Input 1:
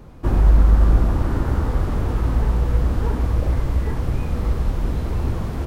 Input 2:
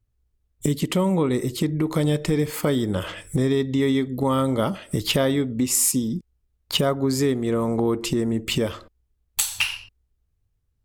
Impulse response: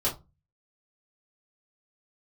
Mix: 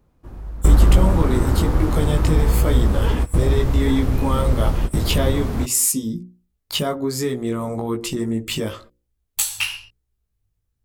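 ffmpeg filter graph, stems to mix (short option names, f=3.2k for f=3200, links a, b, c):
-filter_complex "[0:a]volume=2dB[a];[1:a]bandreject=f=60:t=h:w=6,bandreject=f=120:t=h:w=6,bandreject=f=180:t=h:w=6,bandreject=f=240:t=h:w=6,bandreject=f=300:t=h:w=6,bandreject=f=360:t=h:w=6,bandreject=f=420:t=h:w=6,bandreject=f=480:t=h:w=6,bandreject=f=540:t=h:w=6,flanger=delay=16.5:depth=2.5:speed=1.1,volume=2dB,asplit=2[b][c];[c]apad=whole_len=249848[d];[a][d]sidechaingate=range=-21dB:threshold=-40dB:ratio=16:detection=peak[e];[e][b]amix=inputs=2:normalize=0,highshelf=f=7.7k:g=5.5"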